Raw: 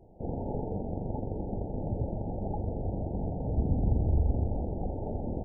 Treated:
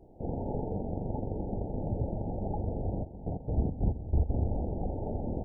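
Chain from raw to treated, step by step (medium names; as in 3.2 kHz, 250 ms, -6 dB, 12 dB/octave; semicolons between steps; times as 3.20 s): band noise 33–380 Hz -62 dBFS; 3.03–4.29 s: trance gate "....x.xx.x..x" 138 bpm -12 dB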